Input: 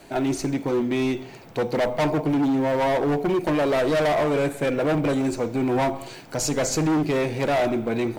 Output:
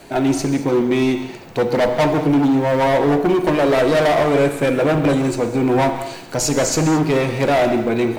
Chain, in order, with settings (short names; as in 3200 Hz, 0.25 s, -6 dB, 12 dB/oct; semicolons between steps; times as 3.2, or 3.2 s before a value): non-linear reverb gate 0.25 s flat, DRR 8 dB; gain +5.5 dB